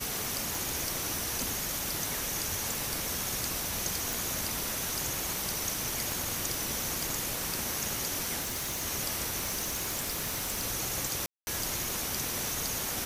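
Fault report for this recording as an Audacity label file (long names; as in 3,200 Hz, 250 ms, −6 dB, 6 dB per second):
0.550000	0.550000	click
4.130000	4.130000	click
6.120000	6.120000	click
8.410000	8.830000	clipping −30.5 dBFS
9.380000	10.650000	clipping −28 dBFS
11.260000	11.470000	drop-out 210 ms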